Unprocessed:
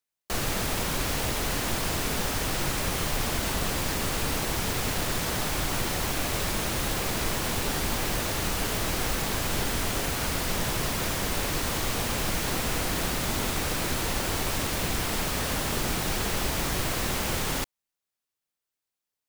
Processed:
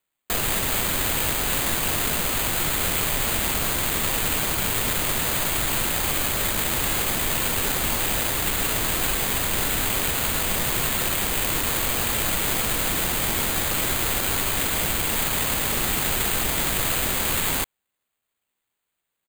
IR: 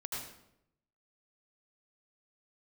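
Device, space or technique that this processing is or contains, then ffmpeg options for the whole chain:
crushed at another speed: -af "asetrate=35280,aresample=44100,acrusher=samples=10:mix=1:aa=0.000001,asetrate=55125,aresample=44100,aemphasis=mode=production:type=75kf"

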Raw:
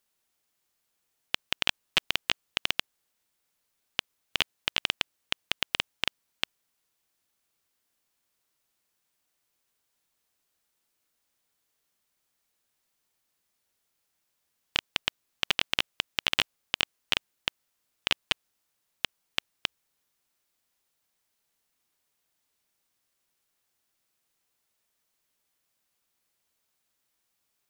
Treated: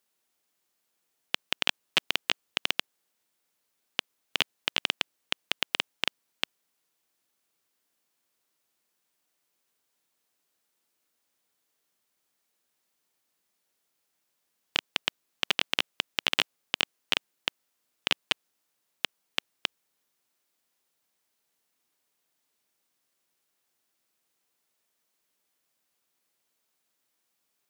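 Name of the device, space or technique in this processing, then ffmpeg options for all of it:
filter by subtraction: -filter_complex "[0:a]asplit=2[link_01][link_02];[link_02]lowpass=280,volume=-1[link_03];[link_01][link_03]amix=inputs=2:normalize=0"

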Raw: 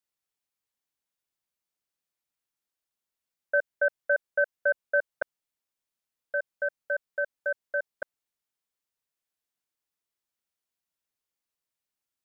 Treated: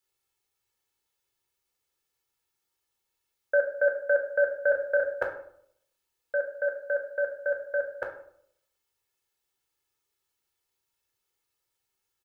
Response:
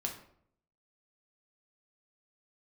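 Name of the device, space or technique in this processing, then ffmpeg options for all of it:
microphone above a desk: -filter_complex "[0:a]aecho=1:1:2.3:0.64[link_01];[1:a]atrim=start_sample=2205[link_02];[link_01][link_02]afir=irnorm=-1:irlink=0,asettb=1/sr,asplit=3[link_03][link_04][link_05];[link_03]atrim=end=4.684[link_06];[link_04]atrim=start=4.68:end=5.14,asetpts=PTS-STARTPTS,afade=type=in:duration=0.004:curve=qsin,afade=type=out:start_time=0.456:duration=0.004:curve=qsin,asplit=2[link_07][link_08];[link_08]adelay=34,volume=-5.5dB[link_09];[link_07][link_09]amix=inputs=2:normalize=0,atrim=end_sample=20286[link_10];[link_05]atrim=start=5.136[link_11];[link_06][link_10]acrossfade=duration=0.004:curve1=hsin:curve2=qsin[link_12];[link_12][link_11]acrossfade=duration=0.004:curve1=qsin:curve2=hsin,volume=5dB"

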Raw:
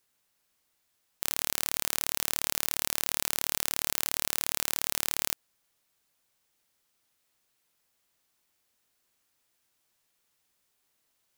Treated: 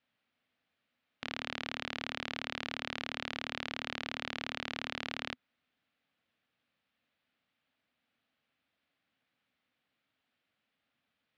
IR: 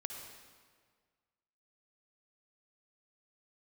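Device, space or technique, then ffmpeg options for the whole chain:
ring modulator pedal into a guitar cabinet: -af "aeval=exprs='val(0)*sgn(sin(2*PI*430*n/s))':channel_layout=same,highpass=85,equalizer=frequency=250:width_type=q:width=4:gain=8,equalizer=frequency=380:width_type=q:width=4:gain=-9,equalizer=frequency=970:width_type=q:width=4:gain=-7,lowpass=frequency=3400:width=0.5412,lowpass=frequency=3400:width=1.3066"

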